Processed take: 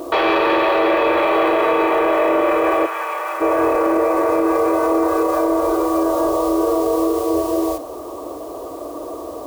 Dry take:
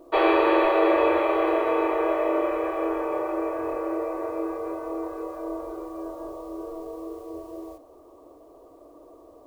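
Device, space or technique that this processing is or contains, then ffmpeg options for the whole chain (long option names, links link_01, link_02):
mastering chain: -filter_complex "[0:a]highpass=43,equalizer=frequency=2200:width_type=o:width=0.77:gain=-2,acompressor=threshold=-26dB:ratio=2.5,asoftclip=type=tanh:threshold=-20dB,tiltshelf=frequency=1100:gain=-4,alimiter=level_in=31dB:limit=-1dB:release=50:level=0:latency=1,asplit=3[link_01][link_02][link_03];[link_01]afade=type=out:start_time=2.85:duration=0.02[link_04];[link_02]highpass=1100,afade=type=in:start_time=2.85:duration=0.02,afade=type=out:start_time=3.4:duration=0.02[link_05];[link_03]afade=type=in:start_time=3.4:duration=0.02[link_06];[link_04][link_05][link_06]amix=inputs=3:normalize=0,volume=-8.5dB"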